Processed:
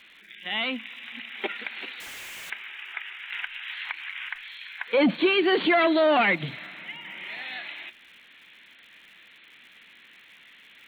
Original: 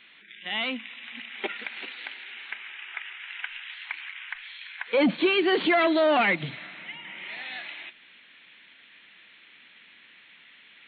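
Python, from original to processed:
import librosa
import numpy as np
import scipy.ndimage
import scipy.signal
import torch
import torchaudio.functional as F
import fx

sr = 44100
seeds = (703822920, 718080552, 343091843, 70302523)

y = fx.clip_1bit(x, sr, at=(2.0, 2.5))
y = fx.dmg_crackle(y, sr, seeds[0], per_s=160.0, level_db=-49.0)
y = fx.band_squash(y, sr, depth_pct=100, at=(3.32, 4.29))
y = F.gain(torch.from_numpy(y), 1.0).numpy()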